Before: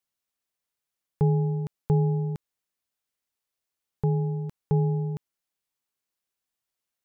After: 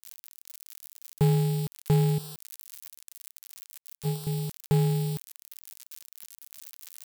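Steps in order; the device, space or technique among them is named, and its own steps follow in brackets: 2.18–4.27 gate -22 dBFS, range -16 dB; budget class-D amplifier (switching dead time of 0.22 ms; switching spikes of -19 dBFS)

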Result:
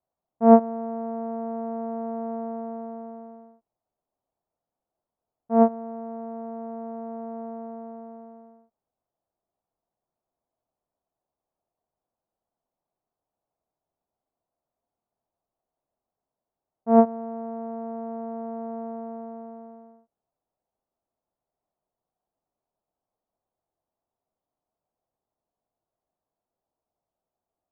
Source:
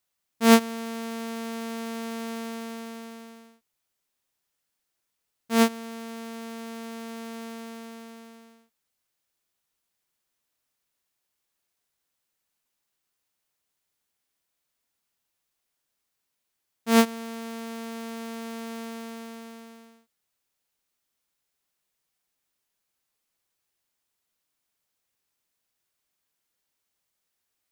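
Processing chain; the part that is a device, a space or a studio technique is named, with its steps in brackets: under water (LPF 990 Hz 24 dB/oct; bell 680 Hz +8.5 dB 0.46 oct); gain +1.5 dB

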